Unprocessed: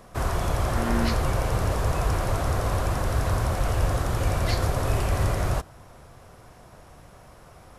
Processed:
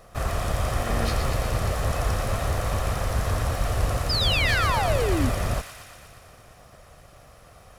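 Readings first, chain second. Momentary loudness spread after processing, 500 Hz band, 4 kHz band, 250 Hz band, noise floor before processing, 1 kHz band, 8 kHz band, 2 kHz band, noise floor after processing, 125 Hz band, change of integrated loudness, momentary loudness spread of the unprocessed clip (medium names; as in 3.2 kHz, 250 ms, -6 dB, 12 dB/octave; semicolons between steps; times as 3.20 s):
7 LU, +1.0 dB, +8.5 dB, -1.0 dB, -50 dBFS, +1.0 dB, +1.5 dB, +5.0 dB, -51 dBFS, -1.0 dB, +1.0 dB, 2 LU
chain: comb filter that takes the minimum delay 1.6 ms; painted sound fall, 4.09–5.30 s, 230–5200 Hz -26 dBFS; feedback echo behind a high-pass 118 ms, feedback 71%, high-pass 1.6 kHz, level -6 dB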